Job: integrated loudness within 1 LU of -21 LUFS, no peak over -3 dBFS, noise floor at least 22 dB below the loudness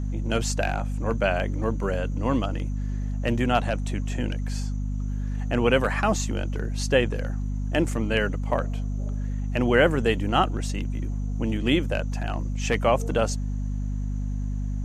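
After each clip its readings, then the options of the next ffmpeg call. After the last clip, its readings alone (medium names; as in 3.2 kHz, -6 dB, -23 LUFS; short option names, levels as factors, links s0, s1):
hum 50 Hz; highest harmonic 250 Hz; hum level -25 dBFS; loudness -26.0 LUFS; peak level -5.5 dBFS; loudness target -21.0 LUFS
-> -af "bandreject=f=50:t=h:w=4,bandreject=f=100:t=h:w=4,bandreject=f=150:t=h:w=4,bandreject=f=200:t=h:w=4,bandreject=f=250:t=h:w=4"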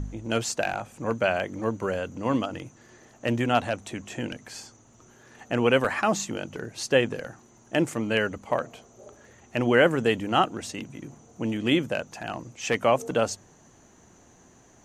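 hum not found; loudness -26.5 LUFS; peak level -6.5 dBFS; loudness target -21.0 LUFS
-> -af "volume=1.88,alimiter=limit=0.708:level=0:latency=1"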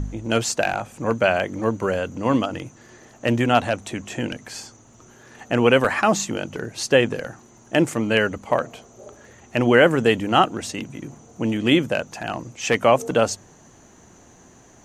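loudness -21.5 LUFS; peak level -3.0 dBFS; noise floor -51 dBFS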